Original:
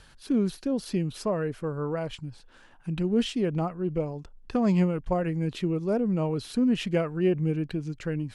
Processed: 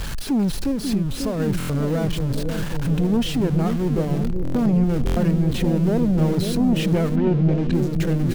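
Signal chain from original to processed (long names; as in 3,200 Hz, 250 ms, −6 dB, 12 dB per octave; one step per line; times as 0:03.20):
converter with a step at zero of −28.5 dBFS
low-shelf EQ 260 Hz +11 dB
repeating echo 437 ms, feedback 54%, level −20.5 dB
0:00.71–0:01.40: downward compressor, threshold −21 dBFS, peak gain reduction 6.5 dB
leveller curve on the samples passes 2
0:07.15–0:07.72: low-pass filter 2,900 Hz → 5,400 Hz 12 dB per octave
bucket-brigade delay 542 ms, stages 2,048, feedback 69%, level −5.5 dB
buffer that repeats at 0:01.58/0:04.43/0:05.05, samples 1,024, times 4
level −8 dB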